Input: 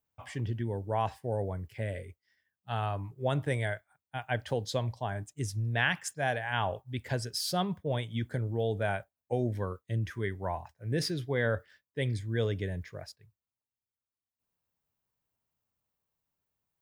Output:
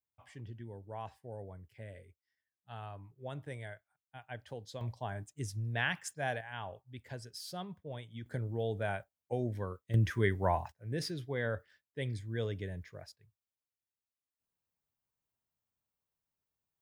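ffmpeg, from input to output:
-af "asetnsamples=n=441:p=0,asendcmd='4.81 volume volume -5dB;6.41 volume volume -12dB;8.26 volume volume -4.5dB;9.94 volume volume 4dB;10.72 volume volume -6dB',volume=0.224"

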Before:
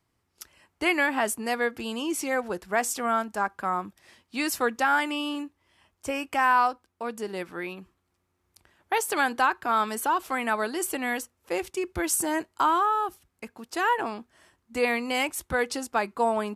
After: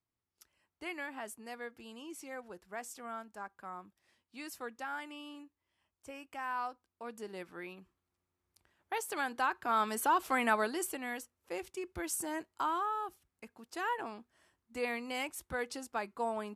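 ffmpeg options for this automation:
-af "volume=0.794,afade=t=in:st=6.44:d=0.74:silence=0.473151,afade=t=in:st=9.3:d=1.14:silence=0.354813,afade=t=out:st=10.44:d=0.55:silence=0.354813"

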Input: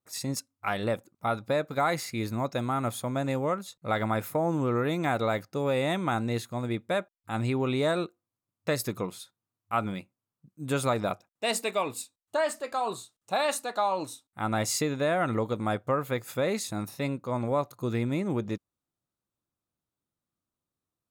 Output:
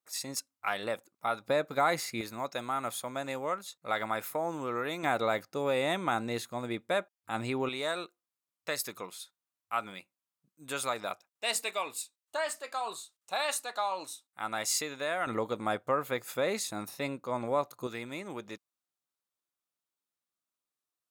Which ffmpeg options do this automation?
-af "asetnsamples=n=441:p=0,asendcmd='1.45 highpass f 310;2.21 highpass f 880;5.03 highpass f 400;7.69 highpass f 1300;15.27 highpass f 440;17.87 highpass f 1200',highpass=f=790:p=1"

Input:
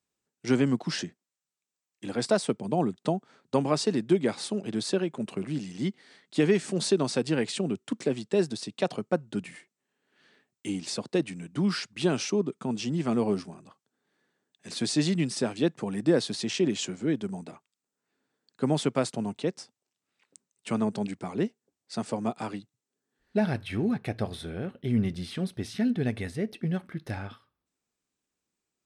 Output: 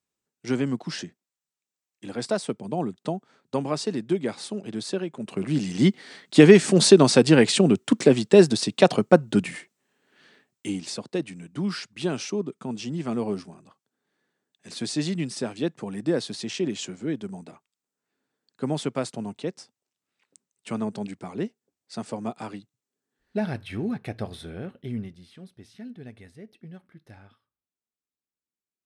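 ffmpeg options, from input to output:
-af "volume=3.55,afade=t=in:st=5.23:d=0.58:silence=0.237137,afade=t=out:st=9.3:d=1.72:silence=0.237137,afade=t=out:st=24.72:d=0.43:silence=0.237137"

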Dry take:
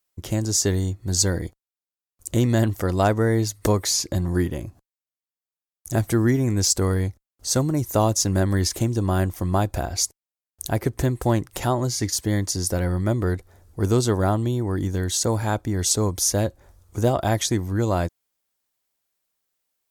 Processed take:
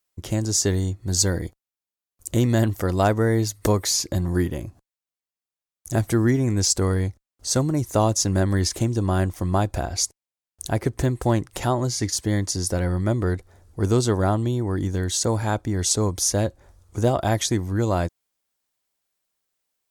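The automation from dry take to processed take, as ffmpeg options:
-af "asetnsamples=n=441:p=0,asendcmd='1.1 equalizer g 0.5;4.66 equalizer g -8.5;6.26 equalizer g -15;17.08 equalizer g -8.5',equalizer=f=14000:t=o:w=0.24:g=-9"

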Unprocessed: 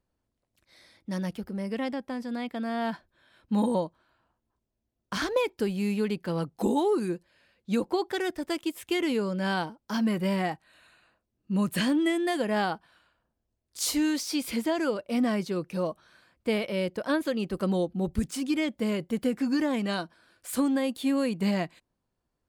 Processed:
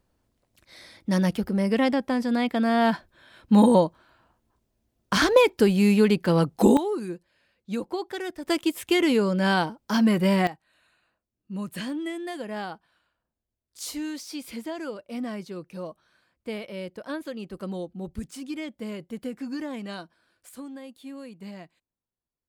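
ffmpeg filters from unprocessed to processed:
-af "asetnsamples=n=441:p=0,asendcmd='6.77 volume volume -3dB;8.46 volume volume 6dB;10.47 volume volume -6.5dB;20.49 volume volume -14dB',volume=2.82"

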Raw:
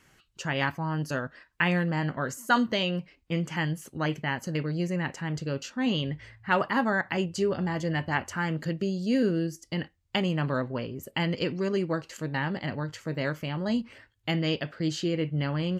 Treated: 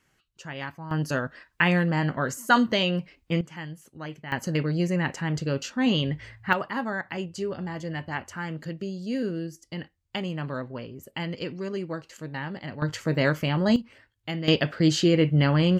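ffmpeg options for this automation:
-af "asetnsamples=n=441:p=0,asendcmd='0.91 volume volume 3.5dB;3.41 volume volume -8.5dB;4.32 volume volume 4dB;6.53 volume volume -4dB;12.82 volume volume 7dB;13.76 volume volume -3.5dB;14.48 volume volume 8dB',volume=0.422"

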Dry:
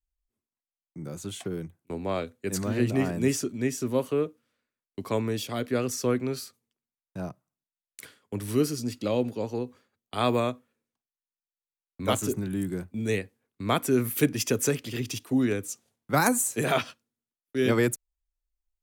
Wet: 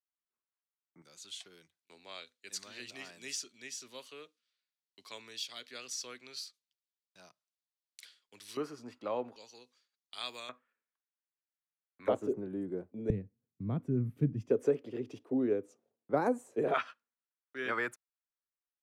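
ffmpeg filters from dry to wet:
-af "asetnsamples=n=441:p=0,asendcmd='1.02 bandpass f 4200;8.57 bandpass f 1000;9.36 bandpass f 4900;10.49 bandpass f 1600;12.08 bandpass f 480;13.1 bandpass f 140;14.5 bandpass f 460;16.74 bandpass f 1400',bandpass=f=1300:t=q:w=1.8:csg=0"

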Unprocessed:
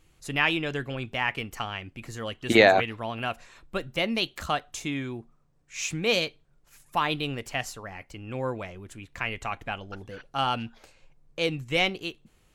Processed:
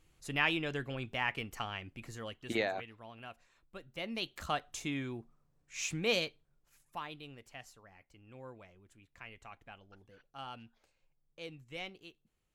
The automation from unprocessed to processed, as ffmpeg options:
-af "volume=1.88,afade=t=out:st=2:d=0.67:silence=0.266073,afade=t=in:st=3.85:d=0.8:silence=0.251189,afade=t=out:st=6.01:d=1.1:silence=0.223872"

